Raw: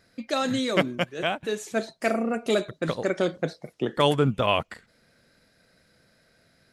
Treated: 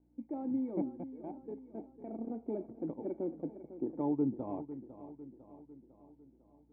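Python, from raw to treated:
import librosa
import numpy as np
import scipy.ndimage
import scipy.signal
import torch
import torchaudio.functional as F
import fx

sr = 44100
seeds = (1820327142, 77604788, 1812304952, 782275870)

y = fx.cvsd(x, sr, bps=32000)
y = fx.highpass(y, sr, hz=190.0, slope=6)
y = fx.level_steps(y, sr, step_db=14, at=(0.89, 2.3))
y = fx.add_hum(y, sr, base_hz=60, snr_db=29)
y = fx.formant_cascade(y, sr, vowel='u')
y = fx.echo_feedback(y, sr, ms=501, feedback_pct=54, wet_db=-13.0)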